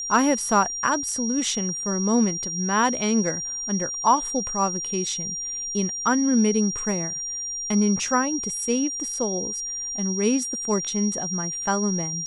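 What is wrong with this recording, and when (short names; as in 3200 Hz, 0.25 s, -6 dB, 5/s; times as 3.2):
tone 5700 Hz -28 dBFS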